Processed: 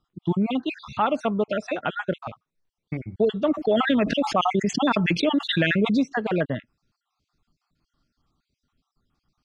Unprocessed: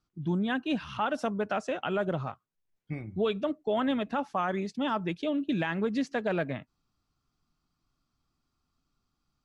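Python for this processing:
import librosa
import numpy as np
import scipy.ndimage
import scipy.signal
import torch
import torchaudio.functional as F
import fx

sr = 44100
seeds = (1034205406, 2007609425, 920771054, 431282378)

y = fx.spec_dropout(x, sr, seeds[0], share_pct=46)
y = scipy.signal.sosfilt(scipy.signal.butter(2, 6000.0, 'lowpass', fs=sr, output='sos'), y)
y = fx.env_flatten(y, sr, amount_pct=70, at=(3.48, 6.0))
y = F.gain(torch.from_numpy(y), 7.5).numpy()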